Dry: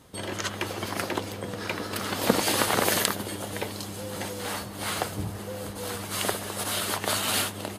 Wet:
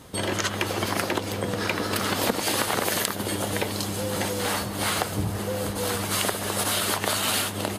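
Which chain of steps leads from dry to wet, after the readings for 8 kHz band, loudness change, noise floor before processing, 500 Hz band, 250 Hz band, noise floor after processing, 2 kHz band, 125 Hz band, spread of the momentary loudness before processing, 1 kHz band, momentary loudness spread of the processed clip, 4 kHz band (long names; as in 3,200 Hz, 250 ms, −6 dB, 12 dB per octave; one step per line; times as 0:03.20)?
+2.5 dB, +3.0 dB, −38 dBFS, +3.0 dB, +3.5 dB, −32 dBFS, +3.0 dB, +5.0 dB, 11 LU, +2.5 dB, 4 LU, +2.5 dB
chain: downward compressor 6 to 1, threshold −29 dBFS, peak gain reduction 14 dB
level +7.5 dB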